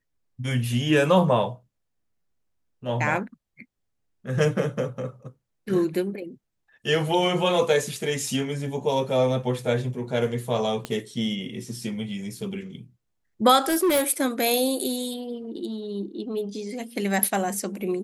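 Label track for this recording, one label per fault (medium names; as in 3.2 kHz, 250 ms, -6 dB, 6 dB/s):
10.850000	10.850000	pop -15 dBFS
13.660000	14.020000	clipped -17.5 dBFS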